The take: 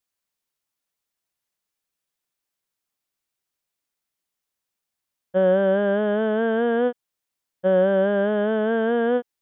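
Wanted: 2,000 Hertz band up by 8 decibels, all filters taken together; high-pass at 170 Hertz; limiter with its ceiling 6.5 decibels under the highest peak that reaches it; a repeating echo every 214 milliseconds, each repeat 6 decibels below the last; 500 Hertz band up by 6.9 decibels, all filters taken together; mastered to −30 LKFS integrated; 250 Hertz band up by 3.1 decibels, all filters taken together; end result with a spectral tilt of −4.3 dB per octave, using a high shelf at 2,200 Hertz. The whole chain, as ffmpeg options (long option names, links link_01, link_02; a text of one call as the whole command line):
ffmpeg -i in.wav -af "highpass=170,equalizer=frequency=250:width_type=o:gain=4,equalizer=frequency=500:width_type=o:gain=6.5,equalizer=frequency=2000:width_type=o:gain=7,highshelf=frequency=2200:gain=7.5,alimiter=limit=-10dB:level=0:latency=1,aecho=1:1:214|428|642|856|1070|1284:0.501|0.251|0.125|0.0626|0.0313|0.0157,volume=-13.5dB" out.wav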